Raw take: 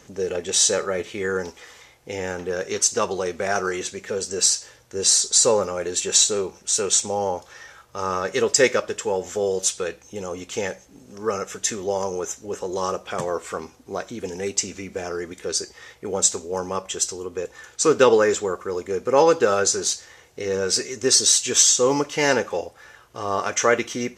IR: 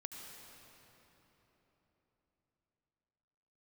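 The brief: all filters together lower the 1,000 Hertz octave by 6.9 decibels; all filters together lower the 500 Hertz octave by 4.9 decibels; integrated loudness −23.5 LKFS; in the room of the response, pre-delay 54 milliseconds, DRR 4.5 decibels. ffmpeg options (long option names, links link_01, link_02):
-filter_complex "[0:a]equalizer=frequency=500:width_type=o:gain=-4,equalizer=frequency=1000:width_type=o:gain=-8,asplit=2[link_01][link_02];[1:a]atrim=start_sample=2205,adelay=54[link_03];[link_02][link_03]afir=irnorm=-1:irlink=0,volume=-2dB[link_04];[link_01][link_04]amix=inputs=2:normalize=0,volume=-1.5dB"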